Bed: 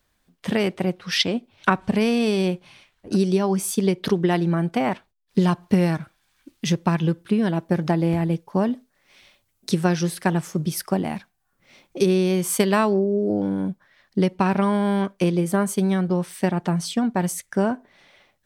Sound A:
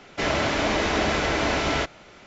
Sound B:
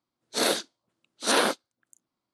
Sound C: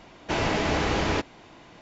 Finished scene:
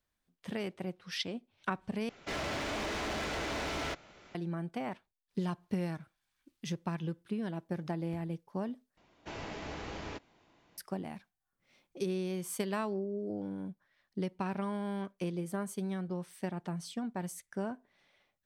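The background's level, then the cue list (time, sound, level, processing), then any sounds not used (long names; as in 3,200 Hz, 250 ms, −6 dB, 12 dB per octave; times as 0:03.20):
bed −15.5 dB
0:02.09: overwrite with A −9 dB + hard clipping −24.5 dBFS
0:08.97: overwrite with C −17 dB
not used: B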